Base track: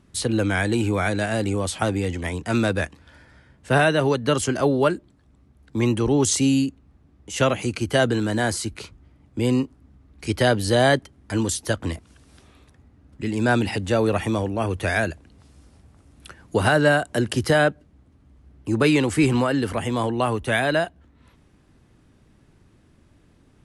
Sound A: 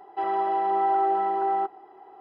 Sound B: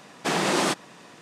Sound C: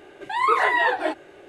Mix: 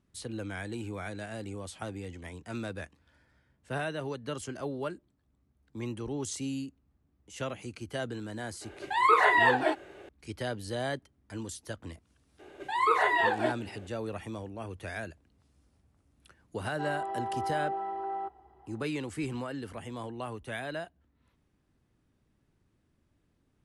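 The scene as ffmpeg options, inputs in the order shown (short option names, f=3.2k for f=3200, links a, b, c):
-filter_complex "[3:a]asplit=2[a][b];[0:a]volume=-16dB[c];[b]equalizer=f=1.9k:t=o:w=1.9:g=-2.5[d];[a]atrim=end=1.48,asetpts=PTS-STARTPTS,volume=-2.5dB,afade=t=in:d=0.004:c=hsin,afade=t=out:st=1.476:d=0.004:c=hsin,adelay=8610[e];[d]atrim=end=1.48,asetpts=PTS-STARTPTS,volume=-4dB,afade=t=in:d=0.004:c=hsin,afade=t=out:st=1.476:d=0.004:c=hsin,adelay=12390[f];[1:a]atrim=end=2.2,asetpts=PTS-STARTPTS,volume=-10.5dB,afade=t=in:d=0.004:c=hsin,afade=t=out:st=2.196:d=0.004:c=hsin,adelay=16620[g];[c][e][f][g]amix=inputs=4:normalize=0"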